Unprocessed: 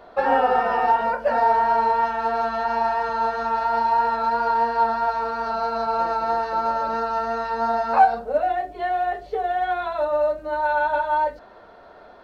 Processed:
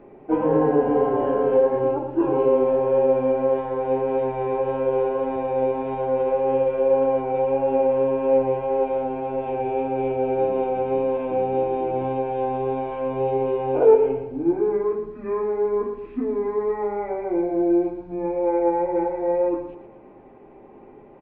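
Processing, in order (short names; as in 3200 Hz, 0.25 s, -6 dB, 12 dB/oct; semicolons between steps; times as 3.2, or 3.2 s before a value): air absorption 120 m; feedback echo 67 ms, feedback 42%, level -10 dB; speed mistake 78 rpm record played at 45 rpm; high shelf 3900 Hz +5 dB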